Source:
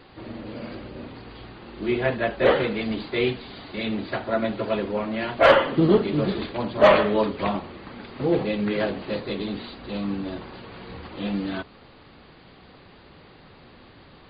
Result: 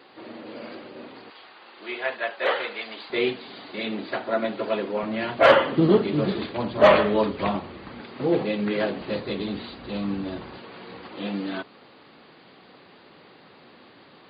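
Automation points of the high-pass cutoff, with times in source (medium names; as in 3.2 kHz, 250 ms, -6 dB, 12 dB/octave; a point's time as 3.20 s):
300 Hz
from 1.30 s 740 Hz
from 3.10 s 240 Hz
from 5.03 s 100 Hz
from 6.57 s 44 Hz
from 8.00 s 150 Hz
from 9.01 s 57 Hz
from 10.58 s 210 Hz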